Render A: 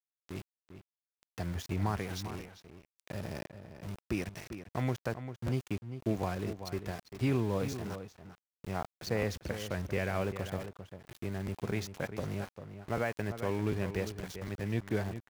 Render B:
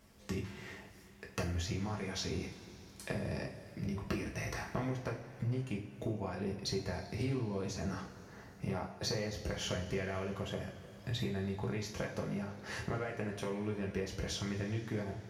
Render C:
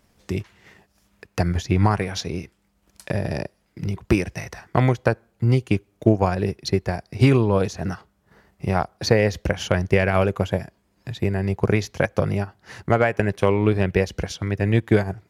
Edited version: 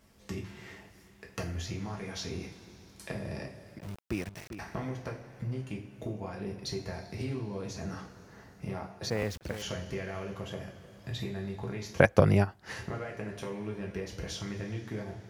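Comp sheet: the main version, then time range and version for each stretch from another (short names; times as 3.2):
B
3.79–4.59 from A
9.1–9.62 from A
12–12.73 from C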